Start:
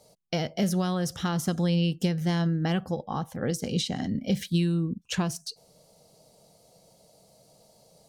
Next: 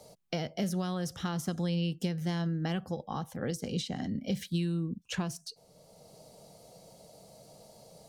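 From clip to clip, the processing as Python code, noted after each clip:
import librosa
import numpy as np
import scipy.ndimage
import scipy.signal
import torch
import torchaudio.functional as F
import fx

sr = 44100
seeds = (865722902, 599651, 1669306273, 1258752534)

y = fx.band_squash(x, sr, depth_pct=40)
y = y * 10.0 ** (-6.0 / 20.0)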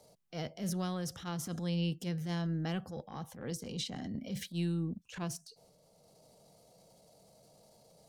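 y = fx.transient(x, sr, attack_db=-9, sustain_db=6)
y = fx.upward_expand(y, sr, threshold_db=-42.0, expansion=1.5)
y = y * 10.0 ** (-1.5 / 20.0)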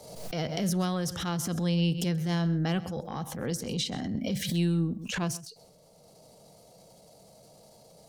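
y = x + 10.0 ** (-19.0 / 20.0) * np.pad(x, (int(130 * sr / 1000.0), 0))[:len(x)]
y = fx.pre_swell(y, sr, db_per_s=54.0)
y = y * 10.0 ** (7.0 / 20.0)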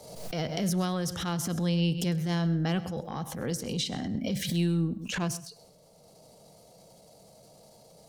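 y = fx.echo_feedback(x, sr, ms=102, feedback_pct=37, wet_db=-21.0)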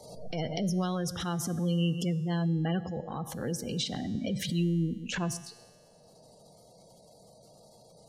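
y = fx.spec_gate(x, sr, threshold_db=-25, keep='strong')
y = fx.comb_fb(y, sr, f0_hz=120.0, decay_s=1.8, harmonics='all', damping=0.0, mix_pct=60)
y = y * 10.0 ** (6.5 / 20.0)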